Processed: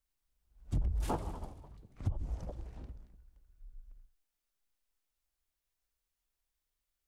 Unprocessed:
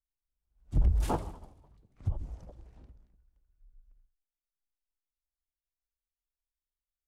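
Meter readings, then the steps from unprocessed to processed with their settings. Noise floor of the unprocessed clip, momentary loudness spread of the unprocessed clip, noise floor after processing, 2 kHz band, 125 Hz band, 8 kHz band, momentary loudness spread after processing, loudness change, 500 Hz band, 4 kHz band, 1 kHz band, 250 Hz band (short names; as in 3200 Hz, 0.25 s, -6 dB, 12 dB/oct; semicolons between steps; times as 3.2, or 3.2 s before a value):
under -85 dBFS, 18 LU, under -85 dBFS, -3.0 dB, -4.5 dB, -3.0 dB, 20 LU, -6.5 dB, -3.0 dB, -3.0 dB, -3.5 dB, -3.0 dB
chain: compressor 5:1, threshold -38 dBFS, peak gain reduction 16.5 dB; gain +7 dB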